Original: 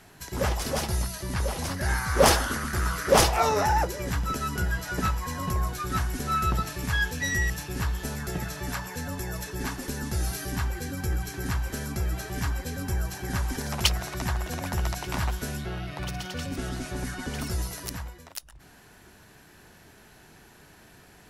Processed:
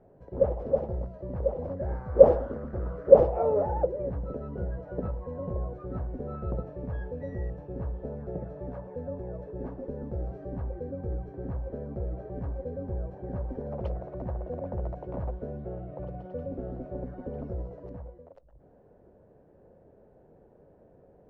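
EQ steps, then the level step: resonant low-pass 530 Hz, resonance Q 5.6; peaking EQ 360 Hz -2 dB; -5.5 dB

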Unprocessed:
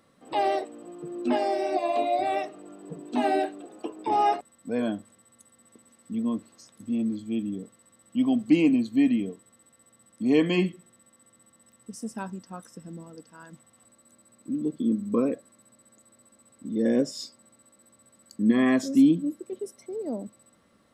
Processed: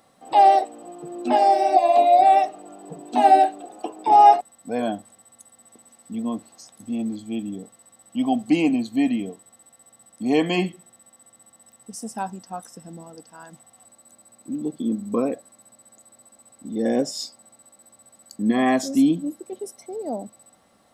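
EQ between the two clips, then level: peaking EQ 760 Hz +14 dB 0.49 oct; treble shelf 3.3 kHz +8.5 dB; 0.0 dB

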